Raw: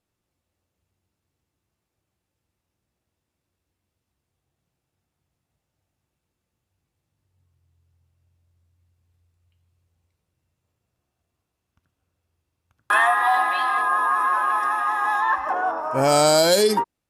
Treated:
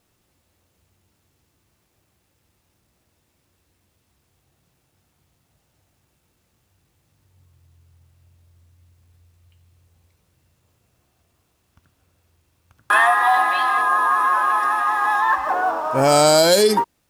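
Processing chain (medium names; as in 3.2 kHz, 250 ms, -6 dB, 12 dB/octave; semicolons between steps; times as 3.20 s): companding laws mixed up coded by mu; trim +2.5 dB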